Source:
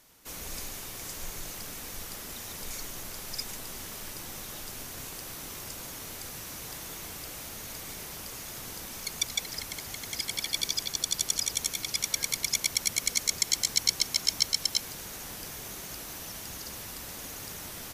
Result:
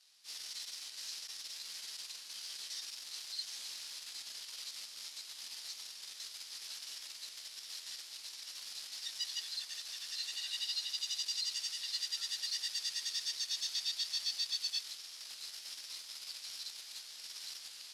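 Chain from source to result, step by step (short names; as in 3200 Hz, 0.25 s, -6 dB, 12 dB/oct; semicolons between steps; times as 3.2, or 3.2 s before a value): pitch shift by moving bins -3 st; in parallel at +2 dB: level quantiser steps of 11 dB; on the sum: tube stage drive 32 dB, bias 0.7; band-pass 4400 Hz, Q 1.9; gain +2 dB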